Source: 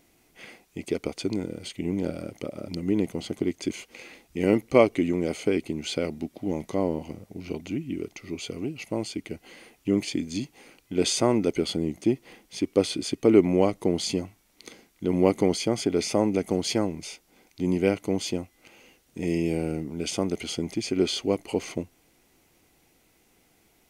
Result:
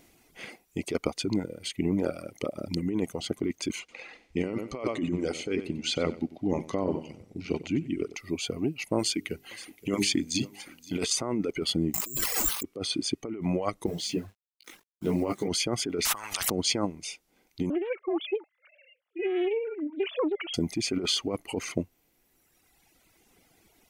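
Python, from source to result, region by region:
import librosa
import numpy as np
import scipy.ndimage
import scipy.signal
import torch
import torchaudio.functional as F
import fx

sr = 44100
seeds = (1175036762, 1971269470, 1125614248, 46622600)

y = fx.chain(x, sr, fx.lowpass(hz=7100.0, slope=12),
    fx.echo_feedback(ms=94, feedback_pct=24, wet_db=-8.0), at=(3.79, 8.16))
y = fx.chain(y, sr, fx.high_shelf(hz=2000.0, db=7.0),
    fx.hum_notches(base_hz=50, count=9),
    fx.echo_single(ms=521, db=-15.5), at=(8.99, 11.1))
y = fx.chain(y, sr, fx.env_flanger(rest_ms=6.8, full_db=-21.0),
    fx.resample_bad(factor=6, down='none', up='zero_stuff'),
    fx.env_flatten(amount_pct=70), at=(11.94, 12.63))
y = fx.chain(y, sr, fx.high_shelf(hz=5900.0, db=-6.5),
    fx.quant_dither(seeds[0], bits=8, dither='none'),
    fx.detune_double(cents=38), at=(13.86, 15.48))
y = fx.chain(y, sr, fx.peak_eq(hz=890.0, db=11.5, octaves=0.65),
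    fx.over_compress(threshold_db=-32.0, ratio=-1.0),
    fx.spectral_comp(ratio=10.0), at=(16.05, 16.5))
y = fx.chain(y, sr, fx.sine_speech(),
    fx.highpass(hz=230.0, slope=12),
    fx.doppler_dist(depth_ms=0.36), at=(17.7, 20.54))
y = fx.dereverb_blind(y, sr, rt60_s=1.8)
y = fx.dynamic_eq(y, sr, hz=1200.0, q=3.1, threshold_db=-50.0, ratio=4.0, max_db=7)
y = fx.over_compress(y, sr, threshold_db=-28.0, ratio=-1.0)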